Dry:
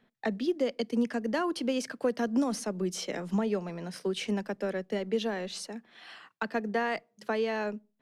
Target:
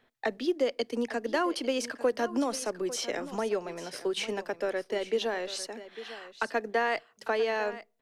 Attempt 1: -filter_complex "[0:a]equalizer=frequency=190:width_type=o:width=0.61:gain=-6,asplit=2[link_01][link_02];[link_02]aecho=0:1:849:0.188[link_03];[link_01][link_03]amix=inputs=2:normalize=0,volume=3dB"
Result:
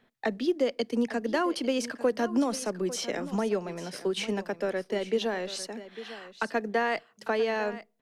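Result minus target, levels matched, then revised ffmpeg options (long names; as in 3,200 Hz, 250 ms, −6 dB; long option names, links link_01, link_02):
250 Hz band +3.0 dB
-filter_complex "[0:a]equalizer=frequency=190:width_type=o:width=0.61:gain=-17,asplit=2[link_01][link_02];[link_02]aecho=0:1:849:0.188[link_03];[link_01][link_03]amix=inputs=2:normalize=0,volume=3dB"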